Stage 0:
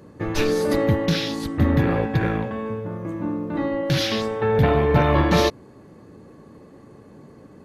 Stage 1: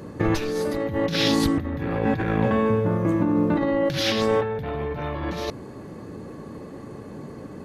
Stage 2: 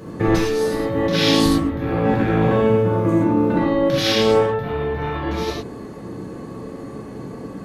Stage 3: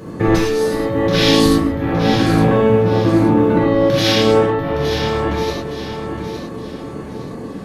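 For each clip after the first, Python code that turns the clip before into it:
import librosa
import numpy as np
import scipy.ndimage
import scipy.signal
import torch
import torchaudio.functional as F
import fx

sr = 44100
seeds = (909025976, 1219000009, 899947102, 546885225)

y1 = fx.over_compress(x, sr, threshold_db=-27.0, ratio=-1.0)
y1 = y1 * 10.0 ** (3.0 / 20.0)
y2 = fx.rev_gated(y1, sr, seeds[0], gate_ms=140, shape='flat', drr_db=-3.0)
y3 = fx.echo_feedback(y2, sr, ms=865, feedback_pct=34, wet_db=-8.5)
y3 = y3 * 10.0 ** (3.0 / 20.0)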